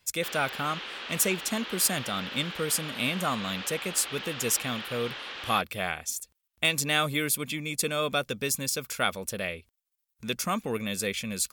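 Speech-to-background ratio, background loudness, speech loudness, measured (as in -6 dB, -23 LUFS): 8.0 dB, -37.0 LUFS, -29.0 LUFS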